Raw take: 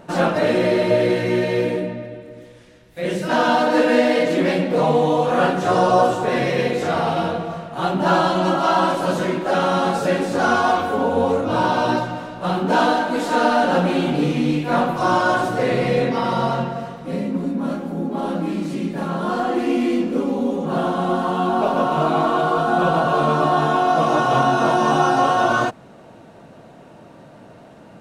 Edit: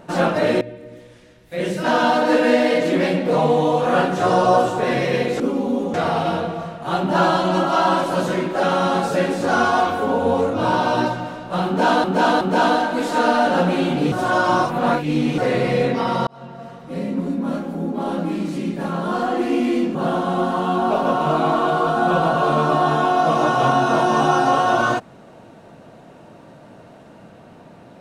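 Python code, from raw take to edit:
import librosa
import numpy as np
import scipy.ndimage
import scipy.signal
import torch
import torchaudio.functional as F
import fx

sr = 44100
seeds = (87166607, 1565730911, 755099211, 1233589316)

y = fx.edit(x, sr, fx.cut(start_s=0.61, length_s=1.45),
    fx.repeat(start_s=12.58, length_s=0.37, count=3),
    fx.reverse_span(start_s=14.29, length_s=1.26),
    fx.fade_in_span(start_s=16.44, length_s=0.88),
    fx.move(start_s=20.12, length_s=0.54, to_s=6.85), tone=tone)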